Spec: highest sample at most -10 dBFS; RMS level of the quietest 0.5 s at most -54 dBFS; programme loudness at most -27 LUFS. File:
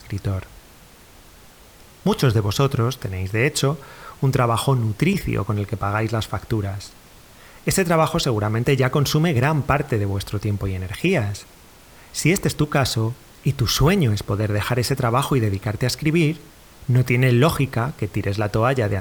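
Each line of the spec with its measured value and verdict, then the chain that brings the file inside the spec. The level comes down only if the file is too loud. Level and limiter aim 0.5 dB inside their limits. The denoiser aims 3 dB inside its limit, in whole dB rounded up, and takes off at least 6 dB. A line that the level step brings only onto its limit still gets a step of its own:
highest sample -5.5 dBFS: fail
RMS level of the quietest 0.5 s -47 dBFS: fail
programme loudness -21.0 LUFS: fail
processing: denoiser 6 dB, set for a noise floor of -47 dBFS; gain -6.5 dB

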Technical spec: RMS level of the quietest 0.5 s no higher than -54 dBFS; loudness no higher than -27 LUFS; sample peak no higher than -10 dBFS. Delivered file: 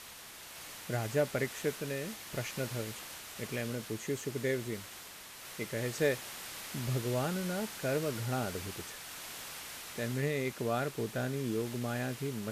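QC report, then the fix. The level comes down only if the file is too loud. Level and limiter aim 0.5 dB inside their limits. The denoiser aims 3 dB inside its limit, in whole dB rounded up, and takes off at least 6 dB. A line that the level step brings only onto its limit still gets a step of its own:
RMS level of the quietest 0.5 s -50 dBFS: fail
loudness -36.0 LUFS: OK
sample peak -16.0 dBFS: OK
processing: denoiser 7 dB, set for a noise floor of -50 dBFS

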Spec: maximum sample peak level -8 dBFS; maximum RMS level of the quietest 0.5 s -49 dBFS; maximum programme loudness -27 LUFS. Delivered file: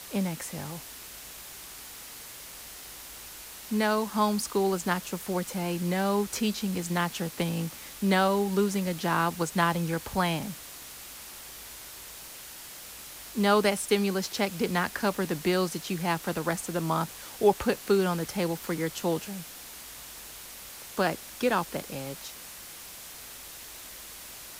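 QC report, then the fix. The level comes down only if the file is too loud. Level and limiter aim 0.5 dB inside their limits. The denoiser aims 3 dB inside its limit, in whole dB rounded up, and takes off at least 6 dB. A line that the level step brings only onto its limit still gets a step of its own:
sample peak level -9.5 dBFS: OK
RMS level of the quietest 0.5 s -44 dBFS: fail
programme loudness -28.5 LUFS: OK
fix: denoiser 8 dB, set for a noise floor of -44 dBFS

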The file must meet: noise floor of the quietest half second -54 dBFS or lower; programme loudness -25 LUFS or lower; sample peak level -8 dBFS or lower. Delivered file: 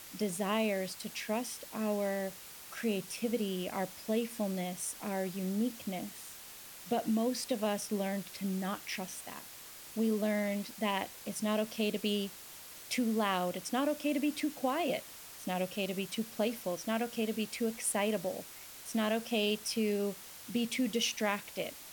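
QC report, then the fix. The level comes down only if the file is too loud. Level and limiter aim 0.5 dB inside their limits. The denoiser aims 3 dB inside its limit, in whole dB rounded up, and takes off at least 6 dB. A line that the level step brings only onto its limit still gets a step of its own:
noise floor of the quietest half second -50 dBFS: fail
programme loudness -34.5 LUFS: OK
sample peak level -17.5 dBFS: OK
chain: denoiser 7 dB, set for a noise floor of -50 dBFS

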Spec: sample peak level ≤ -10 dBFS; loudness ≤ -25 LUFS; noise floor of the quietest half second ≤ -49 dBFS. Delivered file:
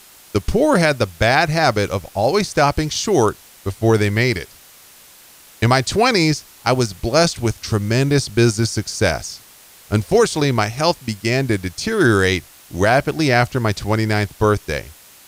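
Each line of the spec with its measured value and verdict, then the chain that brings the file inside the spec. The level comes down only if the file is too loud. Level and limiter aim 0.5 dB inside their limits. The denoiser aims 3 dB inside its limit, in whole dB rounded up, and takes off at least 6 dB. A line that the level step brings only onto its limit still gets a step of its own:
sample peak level -3.0 dBFS: fail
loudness -18.0 LUFS: fail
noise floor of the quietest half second -45 dBFS: fail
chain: gain -7.5 dB

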